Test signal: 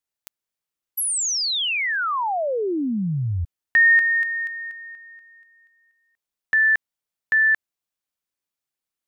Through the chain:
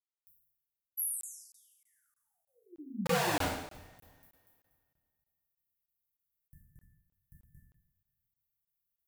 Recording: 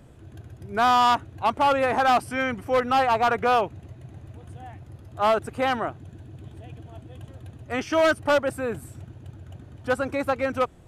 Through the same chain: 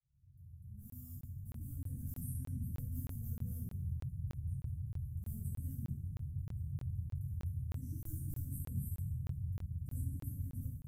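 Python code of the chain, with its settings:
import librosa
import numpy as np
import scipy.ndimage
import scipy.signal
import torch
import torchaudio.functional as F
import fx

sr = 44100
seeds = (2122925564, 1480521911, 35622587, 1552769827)

y = fx.fade_in_head(x, sr, length_s=2.32)
y = scipy.signal.sosfilt(scipy.signal.cheby2(4, 70, [570.0, 4400.0], 'bandstop', fs=sr, output='sos'), y)
y = fx.peak_eq(y, sr, hz=3800.0, db=14.0, octaves=2.5)
y = (np.mod(10.0 ** (29.0 / 20.0) * y + 1.0, 2.0) - 1.0) / 10.0 ** (29.0 / 20.0)
y = fx.rev_double_slope(y, sr, seeds[0], early_s=0.76, late_s=2.1, knee_db=-20, drr_db=-7.5)
y = fx.buffer_crackle(y, sr, first_s=0.9, period_s=0.31, block=1024, kind='zero')
y = y * 10.0 ** (-3.5 / 20.0)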